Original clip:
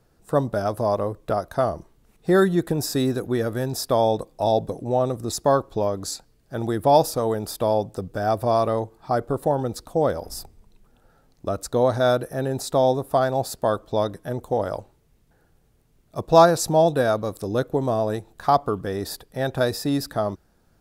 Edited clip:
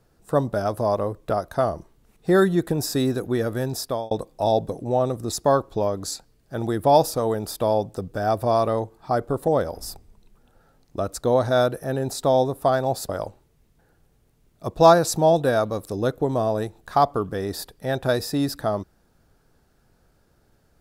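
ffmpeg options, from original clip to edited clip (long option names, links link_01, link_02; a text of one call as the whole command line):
ffmpeg -i in.wav -filter_complex "[0:a]asplit=4[link_01][link_02][link_03][link_04];[link_01]atrim=end=4.11,asetpts=PTS-STARTPTS,afade=type=out:start_time=3.62:duration=0.49:curve=qsin[link_05];[link_02]atrim=start=4.11:end=9.482,asetpts=PTS-STARTPTS,afade=type=in:duration=0.004:curve=hsin[link_06];[link_03]atrim=start=9.968:end=13.582[link_07];[link_04]atrim=start=14.608[link_08];[link_05][link_06]concat=n=2:v=0:a=1[link_09];[link_09][link_07]acrossfade=duration=0.004:curve1=hsin:curve2=hsin[link_10];[link_10][link_08]acrossfade=duration=0.004:curve1=hsin:curve2=hsin" out.wav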